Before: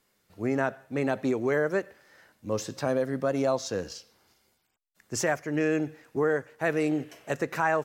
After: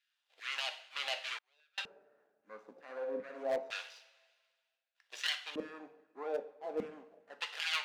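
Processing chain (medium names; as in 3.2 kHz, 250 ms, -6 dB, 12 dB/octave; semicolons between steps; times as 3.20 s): median filter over 41 samples; peaking EQ 150 Hz -13 dB 1.7 oct; 2.76–3.58 s: flutter echo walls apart 10.9 m, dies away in 0.63 s; LFO high-pass saw down 2.5 Hz 510–1800 Hz; two-slope reverb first 0.47 s, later 1.8 s, from -18 dB, DRR 6 dB; 1.37–1.78 s: inverted gate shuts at -35 dBFS, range -39 dB; LFO band-pass square 0.27 Hz 200–3200 Hz; overload inside the chain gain 35 dB; treble shelf 2.9 kHz +10 dB; trim +7 dB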